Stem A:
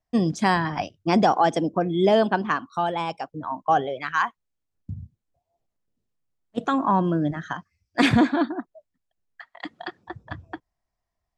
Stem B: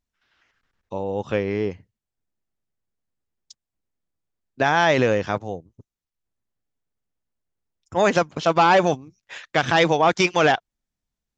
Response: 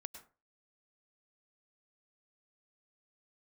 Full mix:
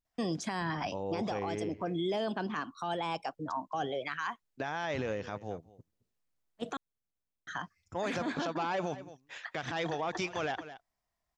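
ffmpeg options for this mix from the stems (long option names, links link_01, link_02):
-filter_complex "[0:a]lowshelf=frequency=350:gain=-8,acrossover=split=390|2600[link_01][link_02][link_03];[link_01]acompressor=threshold=-32dB:ratio=4[link_04];[link_02]acompressor=threshold=-31dB:ratio=4[link_05];[link_03]acompressor=threshold=-41dB:ratio=4[link_06];[link_04][link_05][link_06]amix=inputs=3:normalize=0,alimiter=level_in=0.5dB:limit=-24dB:level=0:latency=1:release=12,volume=-0.5dB,adelay=50,volume=0dB,asplit=3[link_07][link_08][link_09];[link_07]atrim=end=6.77,asetpts=PTS-STARTPTS,afade=type=out:start_time=6.766:duration=0.004:curve=hsin[link_10];[link_08]atrim=start=6.77:end=7.47,asetpts=PTS-STARTPTS,volume=0[link_11];[link_09]atrim=start=7.47,asetpts=PTS-STARTPTS,afade=type=in:duration=0.004:curve=hsin[link_12];[link_10][link_11][link_12]concat=n=3:v=0:a=1[link_13];[1:a]volume=-9dB,asplit=2[link_14][link_15];[link_15]volume=-21.5dB,aecho=0:1:217:1[link_16];[link_13][link_14][link_16]amix=inputs=3:normalize=0,alimiter=level_in=1dB:limit=-24dB:level=0:latency=1:release=92,volume=-1dB"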